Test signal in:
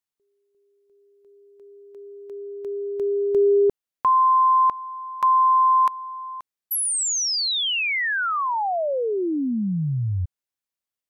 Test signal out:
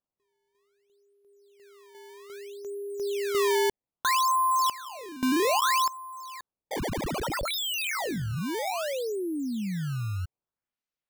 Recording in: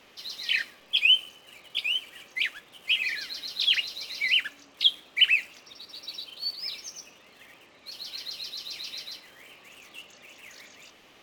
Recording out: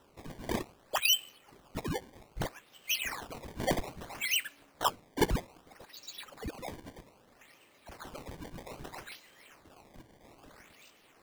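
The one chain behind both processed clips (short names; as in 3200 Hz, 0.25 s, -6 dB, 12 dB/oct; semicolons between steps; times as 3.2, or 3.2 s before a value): decimation with a swept rate 19×, swing 160% 0.62 Hz; gain -7 dB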